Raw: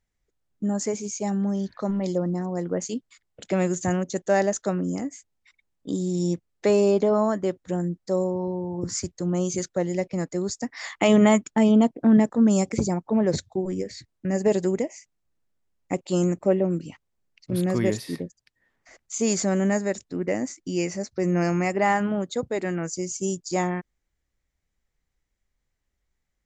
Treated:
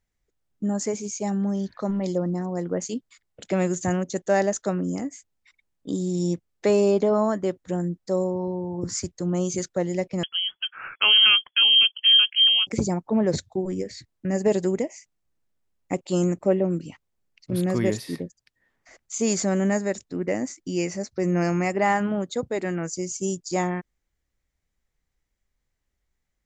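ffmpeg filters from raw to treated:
-filter_complex "[0:a]asettb=1/sr,asplit=3[a][b][c];[a]atrim=end=10.234[d];[b]atrim=start=10.23:end=12.67,asetpts=PTS-STARTPTS,afade=t=in:d=0.004:c=qsin,afade=t=out:st=2.436:d=0.004:c=qsin,lowpass=f=2.9k:t=q:w=0.5098,lowpass=f=2.9k:t=q:w=0.6013,lowpass=f=2.9k:t=q:w=0.9,lowpass=f=2.9k:t=q:w=2.563,afreqshift=-3400[e];[c]atrim=start=12.666[f];[d][e]acrossfade=d=0.004:c1=hsin:c2=qsin[g];[g][f]acrossfade=d=0.004:c1=qsin:c2=hsin"

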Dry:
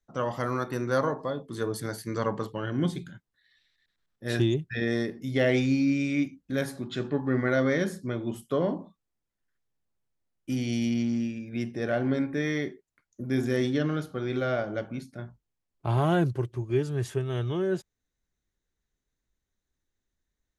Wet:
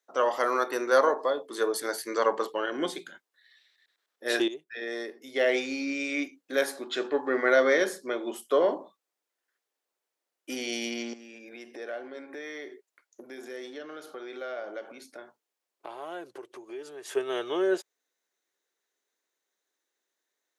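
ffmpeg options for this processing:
-filter_complex "[0:a]asettb=1/sr,asplit=3[a][b][c];[a]atrim=end=11.134[d];[b]atrim=start=11.13:end=17.11,asetpts=PTS-STARTPTS,afade=t=in:d=0.004:c=qsin,afade=t=out:st=5.976:d=0.004:c=qsin,acompressor=threshold=-38dB:ratio=5:attack=3.2:release=140:knee=1:detection=peak[e];[c]atrim=start=17.106[f];[d][e]acrossfade=d=0.004:c1=hsin:c2=qsin[g];[g][f]acrossfade=d=0.004:c1=qsin:c2=hsin,asplit=2[h][i];[h]atrim=end=4.48,asetpts=PTS-STARTPTS,afade=t=out:st=4.476:d=0.004:c=hsin:silence=0.211349[j];[i]atrim=start=4.48,asetpts=PTS-STARTPTS,afade=t=in:d=2.05:silence=0.211349[k];[j][k]concat=n=2:v=0:a=1,highpass=f=380:w=0.5412,highpass=f=380:w=1.3066,volume=5.5dB"

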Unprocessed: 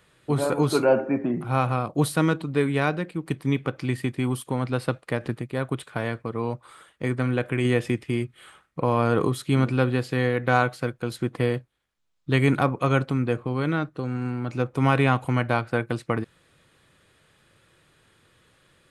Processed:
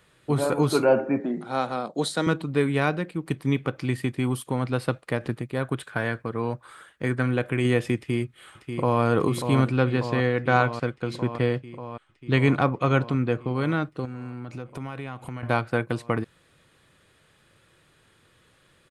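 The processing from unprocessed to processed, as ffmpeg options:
-filter_complex "[0:a]asettb=1/sr,asplit=3[a][b][c];[a]atrim=end=1.204[d];[b]atrim=start=1.2:end=2.27,asetpts=PTS-STARTPTS,afade=t=in:d=0.004:c=qsin,afade=t=out:st=1.066:d=0.004:c=qsin,highpass=f=200:w=0.5412,highpass=f=200:w=1.3066,equalizer=f=310:t=q:w=4:g=-5,equalizer=f=1.1k:t=q:w=4:g=-7,equalizer=f=2.6k:t=q:w=4:g=-9,equalizer=f=3.9k:t=q:w=4:g=8,equalizer=f=7.4k:t=q:w=4:g=4,lowpass=f=9k:w=0.5412,lowpass=f=9k:w=1.3066[e];[c]atrim=start=2.266[f];[d][e]acrossfade=d=0.004:c1=hsin:c2=qsin[g];[g][f]acrossfade=d=0.004:c1=qsin:c2=hsin,asettb=1/sr,asplit=3[h][i][j];[h]atrim=end=5.634[k];[i]atrim=start=5.63:end=7.26,asetpts=PTS-STARTPTS,afade=t=in:d=0.004:c=qsin,afade=t=out:st=1.626:d=0.004:c=qsin,equalizer=f=1.6k:w=5.4:g=8.5[l];[j]atrim=start=7.256[m];[k][l]acrossfade=d=0.004:c1=hsin:c2=qsin[n];[n][m]acrossfade=d=0.004:c1=qsin:c2=hsin,asplit=2[o][p];[p]afade=t=in:st=7.96:d=0.01,afade=t=out:st=9.02:d=0.01,aecho=0:1:590|1180|1770|2360|2950|3540|4130|4720|5310|5900|6490|7080:0.446684|0.357347|0.285877|0.228702|0.182962|0.146369|0.117095|0.0936763|0.0749411|0.0599529|0.0479623|0.0383698[q];[o][q]amix=inputs=2:normalize=0,asettb=1/sr,asplit=3[r][s][t];[r]atrim=end=9.714[u];[s]atrim=start=9.71:end=13.55,asetpts=PTS-STARTPTS,afade=t=in:d=0.004:c=qsin,afade=t=out:st=3.836:d=0.004:c=qsin,lowpass=6.3k[v];[t]atrim=start=13.546[w];[u][v]acrossfade=d=0.004:c1=hsin:c2=qsin[x];[x][w]acrossfade=d=0.004:c1=qsin:c2=hsin,asettb=1/sr,asplit=3[y][z][aa];[y]atrim=end=14.054[ab];[z]atrim=start=14.05:end=15.43,asetpts=PTS-STARTPTS,afade=t=in:d=0.004:c=qsin,afade=t=out:st=1.376:d=0.004:c=qsin,acompressor=threshold=-33dB:ratio=4:attack=3.2:release=140:knee=1:detection=peak[ac];[aa]atrim=start=15.426[ad];[ab][ac]acrossfade=d=0.004:c1=hsin:c2=qsin[ae];[ae][ad]acrossfade=d=0.004:c1=qsin:c2=hsin"

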